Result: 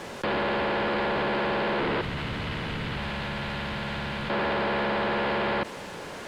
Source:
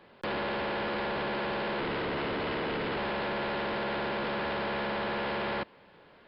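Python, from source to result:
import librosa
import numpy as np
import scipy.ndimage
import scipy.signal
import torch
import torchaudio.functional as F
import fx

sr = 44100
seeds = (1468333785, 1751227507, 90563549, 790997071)

y = fx.curve_eq(x, sr, hz=(130.0, 380.0, 3600.0), db=(0, -18, -6), at=(2.01, 4.3))
y = fx.quant_dither(y, sr, seeds[0], bits=10, dither='triangular')
y = fx.air_absorb(y, sr, metres=76.0)
y = fx.env_flatten(y, sr, amount_pct=50)
y = y * 10.0 ** (6.0 / 20.0)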